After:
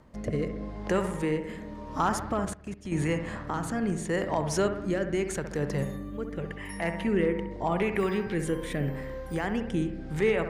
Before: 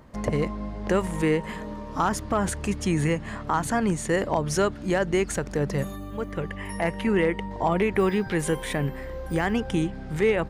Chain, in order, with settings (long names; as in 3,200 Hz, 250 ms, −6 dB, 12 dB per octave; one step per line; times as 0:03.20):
rotating-speaker cabinet horn 0.85 Hz
bucket-brigade delay 65 ms, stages 1,024, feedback 58%, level −8.5 dB
0:02.45–0:02.92: output level in coarse steps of 16 dB
level −2.5 dB